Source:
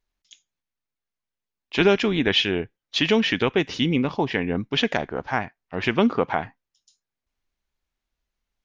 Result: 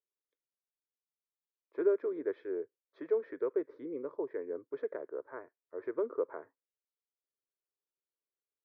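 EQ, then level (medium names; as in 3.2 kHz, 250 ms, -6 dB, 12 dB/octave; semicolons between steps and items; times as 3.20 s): ladder band-pass 510 Hz, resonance 35%; distance through air 130 m; static phaser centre 770 Hz, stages 6; 0.0 dB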